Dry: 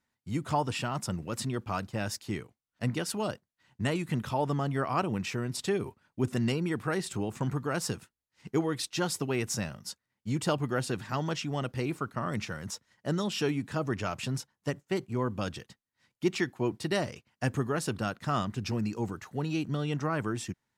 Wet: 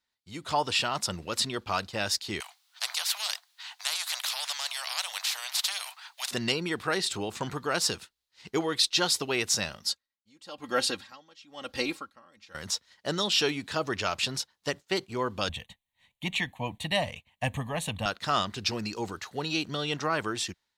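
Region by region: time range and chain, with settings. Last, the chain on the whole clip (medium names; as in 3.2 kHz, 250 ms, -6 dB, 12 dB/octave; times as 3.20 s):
2.40–6.31 s: steep high-pass 720 Hz 72 dB/octave + spectrum-flattening compressor 4:1
9.82–12.55 s: comb 3.7 ms, depth 66% + logarithmic tremolo 1 Hz, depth 29 dB
15.49–18.06 s: bass shelf 330 Hz +8.5 dB + static phaser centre 1.4 kHz, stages 6
whole clip: graphic EQ 125/250/4000 Hz -11/-6/+11 dB; level rider gain up to 9 dB; trim -5 dB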